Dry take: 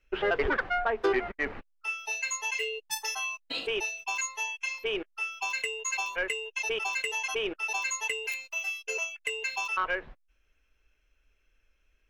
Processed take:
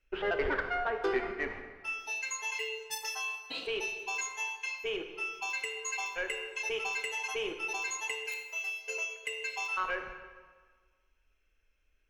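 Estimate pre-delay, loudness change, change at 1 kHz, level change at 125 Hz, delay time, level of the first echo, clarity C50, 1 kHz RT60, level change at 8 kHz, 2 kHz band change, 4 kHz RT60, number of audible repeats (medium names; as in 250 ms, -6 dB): 21 ms, -3.5 dB, -4.0 dB, no reading, no echo, no echo, 7.0 dB, 1.6 s, -4.5 dB, -3.5 dB, 1.2 s, no echo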